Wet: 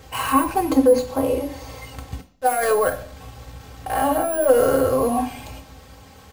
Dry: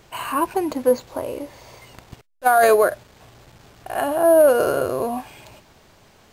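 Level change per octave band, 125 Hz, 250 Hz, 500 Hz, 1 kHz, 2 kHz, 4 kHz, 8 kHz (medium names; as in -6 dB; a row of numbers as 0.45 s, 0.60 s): +7.0 dB, +5.0 dB, -1.5 dB, -0.5 dB, -3.0 dB, +2.5 dB, +2.5 dB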